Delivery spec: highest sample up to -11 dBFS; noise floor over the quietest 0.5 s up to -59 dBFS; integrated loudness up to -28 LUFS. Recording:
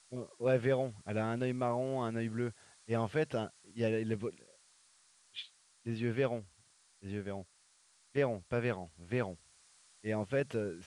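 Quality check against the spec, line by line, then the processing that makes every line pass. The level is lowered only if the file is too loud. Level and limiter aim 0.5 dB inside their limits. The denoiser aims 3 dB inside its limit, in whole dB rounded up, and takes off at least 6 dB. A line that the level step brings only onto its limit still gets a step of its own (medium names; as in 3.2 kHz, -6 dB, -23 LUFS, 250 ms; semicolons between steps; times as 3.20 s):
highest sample -18.5 dBFS: pass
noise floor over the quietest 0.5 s -68 dBFS: pass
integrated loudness -36.0 LUFS: pass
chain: none needed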